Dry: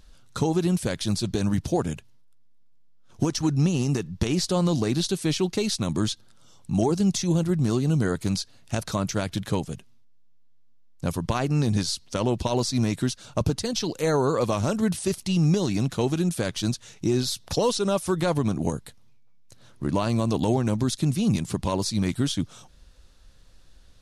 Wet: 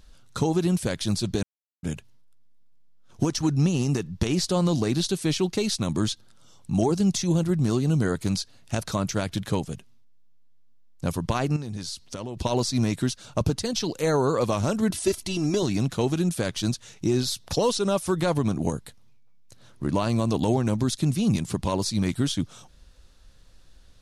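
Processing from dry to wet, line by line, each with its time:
0:01.43–0:01.83: silence
0:11.56–0:12.37: downward compressor, threshold −30 dBFS
0:14.90–0:15.63: comb filter 3 ms, depth 73%

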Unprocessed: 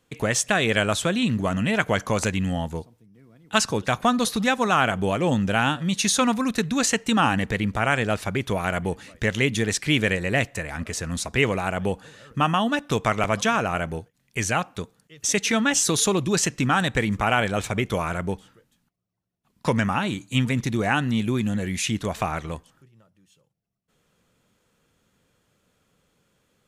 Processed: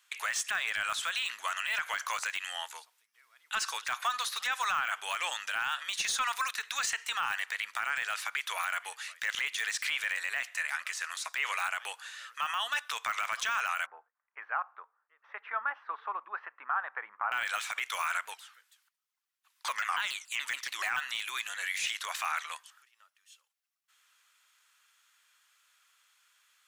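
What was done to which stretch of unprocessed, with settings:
0:13.86–0:17.32: inverse Chebyshev low-pass filter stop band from 6,600 Hz, stop band 80 dB
0:18.25–0:20.97: pitch modulation by a square or saw wave saw down 7 Hz, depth 250 cents
whole clip: high-pass filter 1,200 Hz 24 dB per octave; de-essing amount 90%; brickwall limiter −25 dBFS; level +4.5 dB

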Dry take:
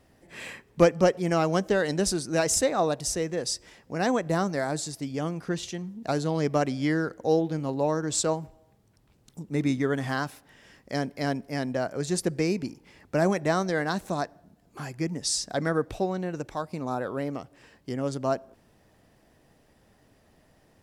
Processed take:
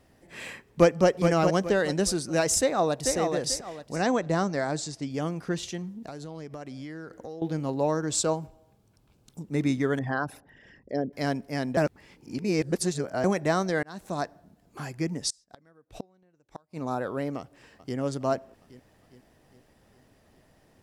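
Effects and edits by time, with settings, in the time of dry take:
0:00.65–0:01.08: delay throw 420 ms, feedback 30%, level −5.5 dB
0:02.59–0:03.16: delay throw 440 ms, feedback 30%, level −4.5 dB
0:03.96–0:05.11: low-pass filter 7,900 Hz 24 dB per octave
0:05.98–0:07.42: downward compressor 8 to 1, threshold −36 dBFS
0:08.15–0:09.40: notch filter 1,900 Hz, Q 6.4
0:09.99–0:11.13: spectral envelope exaggerated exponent 2
0:11.77–0:13.24: reverse
0:13.83–0:14.24: fade in
0:15.30–0:16.81: gate with flip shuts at −23 dBFS, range −33 dB
0:17.38–0:17.97: delay throw 410 ms, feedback 60%, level −13 dB

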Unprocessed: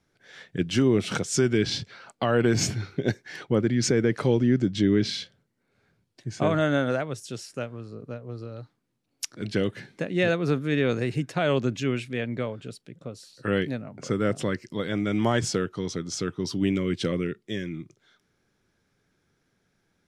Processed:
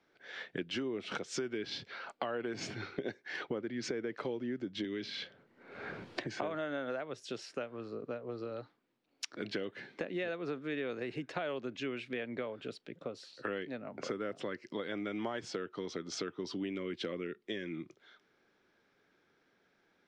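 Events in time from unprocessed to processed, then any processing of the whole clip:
0:04.84–0:06.42: multiband upward and downward compressor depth 100%
whole clip: three-way crossover with the lows and the highs turned down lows −17 dB, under 250 Hz, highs −18 dB, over 4,600 Hz; downward compressor 6 to 1, threshold −38 dBFS; low-pass filter 10,000 Hz; level +2.5 dB

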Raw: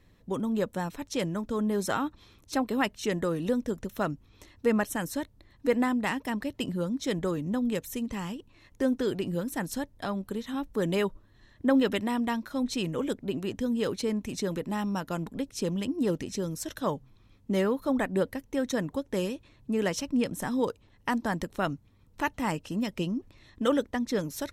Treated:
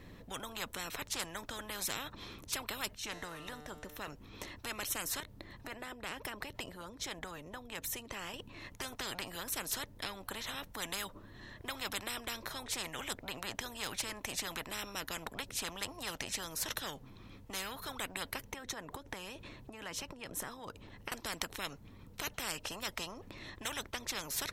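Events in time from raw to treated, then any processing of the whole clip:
0:02.94–0:04.08: tuned comb filter 150 Hz, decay 1.5 s, mix 70%
0:05.20–0:08.34: downward compressor 2.5 to 1, threshold −42 dBFS
0:18.53–0:21.12: downward compressor 16 to 1, threshold −39 dBFS
whole clip: parametric band 7,800 Hz −4.5 dB 2 octaves; every bin compressed towards the loudest bin 10 to 1; level −2.5 dB

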